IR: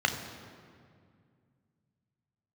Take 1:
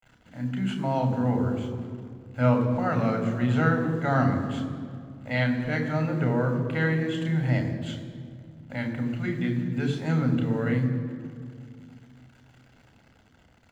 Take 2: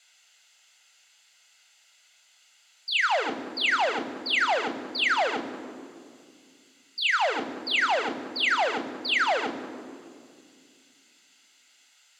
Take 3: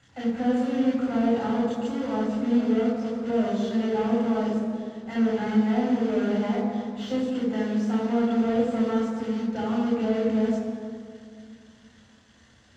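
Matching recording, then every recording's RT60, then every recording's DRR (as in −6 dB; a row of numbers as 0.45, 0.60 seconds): 1; 2.2, 2.2, 2.2 seconds; 4.5, 9.5, −5.0 decibels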